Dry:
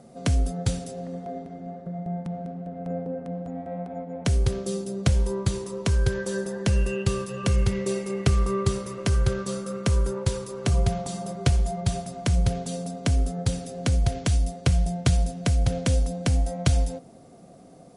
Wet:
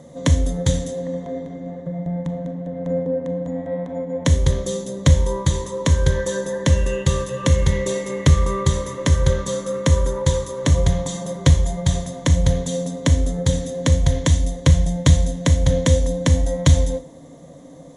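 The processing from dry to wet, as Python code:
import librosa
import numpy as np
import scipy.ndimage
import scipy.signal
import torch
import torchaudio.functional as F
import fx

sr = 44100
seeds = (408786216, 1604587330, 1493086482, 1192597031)

y = fx.ripple_eq(x, sr, per_octave=1.1, db=12)
y = fx.rev_schroeder(y, sr, rt60_s=0.45, comb_ms=25, drr_db=11.5)
y = y * 10.0 ** (5.0 / 20.0)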